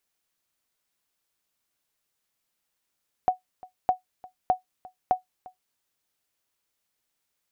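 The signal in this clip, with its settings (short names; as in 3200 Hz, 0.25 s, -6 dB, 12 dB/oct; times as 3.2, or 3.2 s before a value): sonar ping 739 Hz, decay 0.13 s, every 0.61 s, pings 4, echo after 0.35 s, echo -22.5 dB -12 dBFS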